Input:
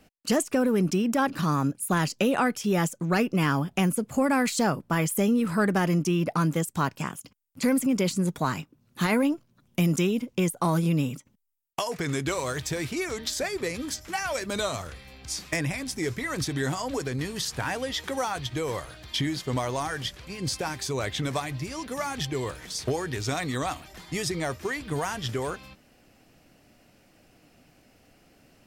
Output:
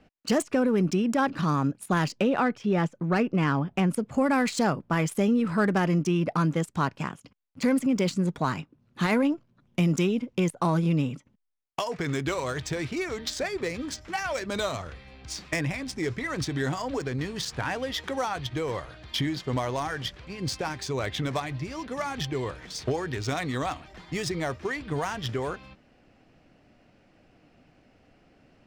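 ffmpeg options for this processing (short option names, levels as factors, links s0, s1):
-filter_complex "[0:a]asettb=1/sr,asplit=3[s0][s1][s2];[s0]atrim=end=2.184[s3];[s1]atrim=start=2.18:end=3.9,asetpts=PTS-STARTPTS,afade=t=in:d=0.004:c=qsin,afade=t=out:st=1.716:d=0.004:c=qsin,equalizer=f=11000:t=o:w=1.9:g=-12.5[s4];[s2]atrim=start=3.896[s5];[s3][s4]acrossfade=d=0.004:c1=hsin:c2=qsin[s6];[s6][s5]acrossfade=d=0.004:c1=qsin:c2=hsin,adynamicsmooth=sensitivity=4.5:basefreq=3900"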